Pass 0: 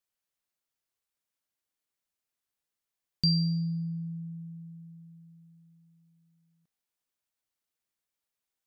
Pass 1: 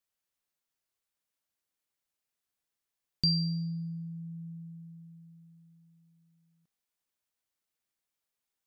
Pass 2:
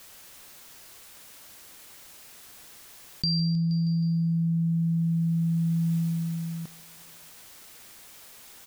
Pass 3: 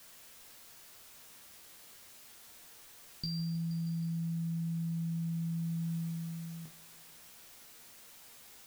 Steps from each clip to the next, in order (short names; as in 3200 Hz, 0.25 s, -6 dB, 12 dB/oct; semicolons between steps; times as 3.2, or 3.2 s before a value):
dynamic EQ 200 Hz, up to -4 dB, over -40 dBFS, Q 0.92
feedback echo 0.158 s, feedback 55%, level -18.5 dB; fast leveller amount 100%; gain -1.5 dB
resonator bank D#2 fifth, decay 0.2 s; added noise white -59 dBFS